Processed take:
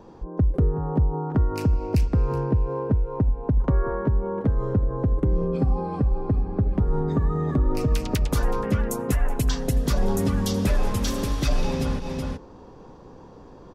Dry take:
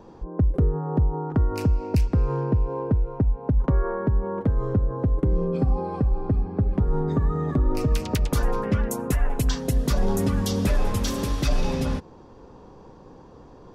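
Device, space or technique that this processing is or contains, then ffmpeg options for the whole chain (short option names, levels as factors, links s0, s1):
ducked delay: -filter_complex "[0:a]asplit=3[s0][s1][s2];[s1]adelay=373,volume=0.631[s3];[s2]apad=whole_len=622536[s4];[s3][s4]sidechaincompress=threshold=0.0178:ratio=8:attack=16:release=122[s5];[s0][s5]amix=inputs=2:normalize=0"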